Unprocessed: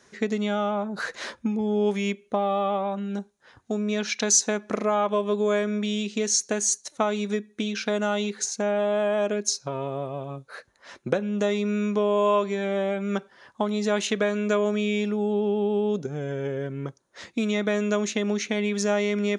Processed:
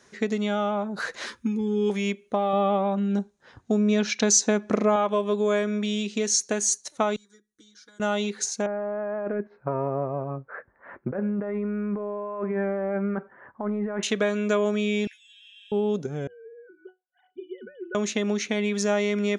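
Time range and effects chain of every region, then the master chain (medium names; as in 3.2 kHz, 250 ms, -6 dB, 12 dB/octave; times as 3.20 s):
1.26–1.90 s: Butterworth band-stop 670 Hz, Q 1.3 + treble shelf 4.6 kHz +5.5 dB + comb of notches 160 Hz
2.53–4.96 s: low-pass 8.8 kHz 24 dB/octave + bass shelf 440 Hz +7 dB
7.16–8.00 s: amplifier tone stack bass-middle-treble 6-0-2 + static phaser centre 700 Hz, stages 6 + comb 6.1 ms, depth 99%
8.66–14.03 s: compressor with a negative ratio -28 dBFS + steep low-pass 1.9 kHz
15.07–15.72 s: brick-wall FIR high-pass 1.5 kHz + doubling 16 ms -5.5 dB
16.27–17.95 s: formants replaced by sine waves + pitch-class resonator F#, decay 0.17 s
whole clip: none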